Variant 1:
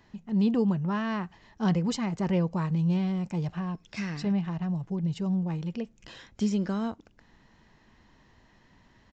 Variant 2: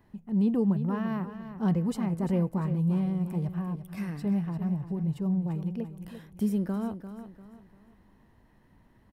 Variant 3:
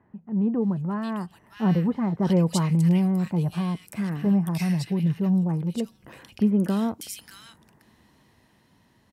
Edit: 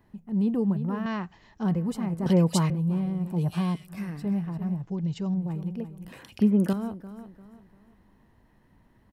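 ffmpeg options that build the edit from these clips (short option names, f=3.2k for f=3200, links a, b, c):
-filter_complex "[0:a]asplit=2[a][b];[2:a]asplit=3[c][d][e];[1:a]asplit=6[f][g][h][i][j][k];[f]atrim=end=1.062[l];[a]atrim=start=1.058:end=1.632[m];[g]atrim=start=1.628:end=2.262[n];[c]atrim=start=2.258:end=2.702[o];[h]atrim=start=2.698:end=3.49[p];[d]atrim=start=3.25:end=3.96[q];[i]atrim=start=3.72:end=4.822[r];[b]atrim=start=4.818:end=5.342[s];[j]atrim=start=5.338:end=6.122[t];[e]atrim=start=6.118:end=6.732[u];[k]atrim=start=6.728[v];[l][m]acrossfade=d=0.004:c1=hsin:c2=hsin[w];[w][n]acrossfade=d=0.004:c1=hsin:c2=hsin[x];[x][o]acrossfade=d=0.004:c1=hsin:c2=hsin[y];[y][p]acrossfade=d=0.004:c1=hsin:c2=hsin[z];[z][q]acrossfade=d=0.24:c1=tri:c2=tri[aa];[aa][r]acrossfade=d=0.24:c1=tri:c2=tri[ab];[ab][s]acrossfade=d=0.004:c1=hsin:c2=hsin[ac];[ac][t]acrossfade=d=0.004:c1=hsin:c2=hsin[ad];[ad][u]acrossfade=d=0.004:c1=hsin:c2=hsin[ae];[ae][v]acrossfade=d=0.004:c1=hsin:c2=hsin"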